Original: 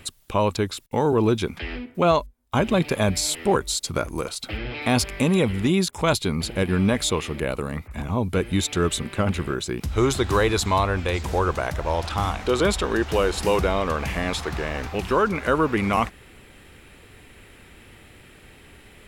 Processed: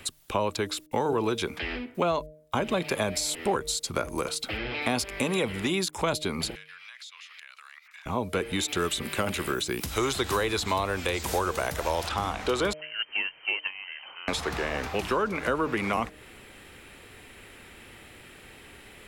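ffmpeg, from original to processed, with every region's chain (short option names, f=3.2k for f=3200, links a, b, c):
-filter_complex "[0:a]asettb=1/sr,asplit=3[a][b][c];[a]atrim=end=6.554[d];[b]atrim=start=6.55:end=8.06,asetpts=PTS-STARTPTS,afade=t=in:d=0.004:c=qsin,afade=t=out:st=1.506:d=0.004:c=qsin,highpass=f=1.5k:w=0.5412,highpass=f=1.5k:w=1.3066,highshelf=f=7.1k:t=q:w=1.5:g=-8.5,acompressor=threshold=-45dB:ratio=6:attack=3.2:release=140:knee=1:detection=peak[e];[c]atrim=start=8.056[f];[d][e]acrossfade=d=0.004:c1=hsin:c2=qsin[g];[g][f]acrossfade=d=0.004:c1=qsin:c2=hsin,asettb=1/sr,asplit=3[h][i][j];[h]atrim=end=8.684[k];[i]atrim=start=8.68:end=12.08,asetpts=PTS-STARTPTS,afade=t=in:d=0.004:c=qsin,afade=t=out:st=3.396:d=0.004:c=qsin,acrossover=split=4100[l][m];[m]acompressor=threshold=-43dB:ratio=4:attack=1:release=60[n];[l][n]amix=inputs=2:normalize=0,aemphasis=mode=production:type=75kf[o];[j]atrim=start=12.076[p];[k][o]acrossfade=d=0.004:c1=hsin:c2=qsin[q];[q][p]acrossfade=d=0.004:c1=qsin:c2=hsin,asettb=1/sr,asplit=3[r][s][t];[r]atrim=end=12.734[u];[s]atrim=start=12.73:end=14.28,asetpts=PTS-STARTPTS,afade=t=in:d=0.004:c=qsin,afade=t=out:st=1.546:d=0.004:c=qsin,agate=range=-17dB:threshold=-20dB:ratio=16:release=100:detection=peak,highpass=f=94:w=0.5412,highpass=f=94:w=1.3066,lowpass=f=2.7k:t=q:w=0.5098,lowpass=f=2.7k:t=q:w=0.6013,lowpass=f=2.7k:t=q:w=0.9,lowpass=f=2.7k:t=q:w=2.563,afreqshift=-3200[v];[t]atrim=start=14.276[w];[u][v]acrossfade=d=0.004:c1=hsin:c2=qsin[x];[x][w]acrossfade=d=0.004:c1=qsin:c2=hsin,lowshelf=f=210:g=-7.5,bandreject=f=153.7:t=h:w=4,bandreject=f=307.4:t=h:w=4,bandreject=f=461.1:t=h:w=4,bandreject=f=614.8:t=h:w=4,acrossover=split=260|520[y][z][aa];[y]acompressor=threshold=-37dB:ratio=4[ab];[z]acompressor=threshold=-33dB:ratio=4[ac];[aa]acompressor=threshold=-29dB:ratio=4[ad];[ab][ac][ad]amix=inputs=3:normalize=0,volume=1.5dB"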